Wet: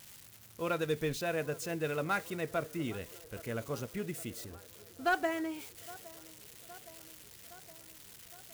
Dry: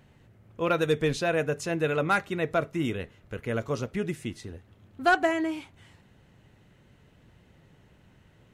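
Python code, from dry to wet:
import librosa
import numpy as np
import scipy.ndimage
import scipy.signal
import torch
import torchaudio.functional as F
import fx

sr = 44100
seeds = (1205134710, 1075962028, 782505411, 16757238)

y = x + 0.5 * 10.0 ** (-31.0 / 20.0) * np.diff(np.sign(x), prepend=np.sign(x[:1]))
y = fx.echo_wet_bandpass(y, sr, ms=815, feedback_pct=69, hz=690.0, wet_db=-19.0)
y = F.gain(torch.from_numpy(y), -8.0).numpy()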